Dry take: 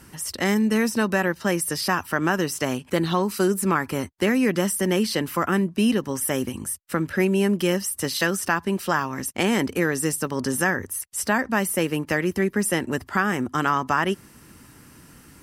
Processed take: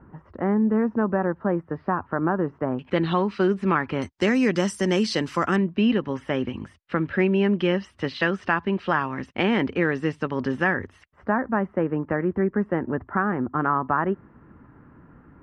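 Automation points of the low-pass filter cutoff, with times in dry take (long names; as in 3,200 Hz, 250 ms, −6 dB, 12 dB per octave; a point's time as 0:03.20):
low-pass filter 24 dB per octave
1,300 Hz
from 0:02.79 3,400 Hz
from 0:04.02 6,600 Hz
from 0:05.56 3,300 Hz
from 0:11.12 1,500 Hz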